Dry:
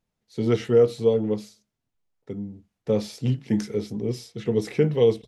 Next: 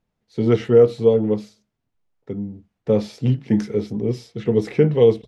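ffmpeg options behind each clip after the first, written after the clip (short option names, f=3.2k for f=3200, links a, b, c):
-af "lowpass=f=2.5k:p=1,volume=5dB"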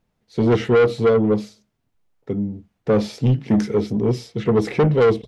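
-af "asoftclip=type=tanh:threshold=-16dB,volume=5dB"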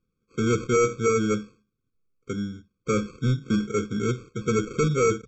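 -af "aresample=16000,acrusher=samples=9:mix=1:aa=0.000001,aresample=44100,afftfilt=real='re*eq(mod(floor(b*sr/1024/530),2),0)':imag='im*eq(mod(floor(b*sr/1024/530),2),0)':win_size=1024:overlap=0.75,volume=-6dB"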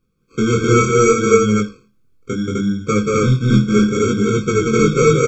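-filter_complex "[0:a]aecho=1:1:180.8|256.6:0.708|1,flanger=delay=19.5:depth=5.1:speed=0.69,asplit=2[a][b];[b]acompressor=threshold=-29dB:ratio=6,volume=-3dB[c];[a][c]amix=inputs=2:normalize=0,volume=7.5dB"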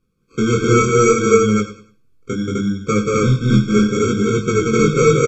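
-af "aecho=1:1:98|196|294:0.188|0.0546|0.0158" -ar 32000 -c:a libmp3lame -b:a 112k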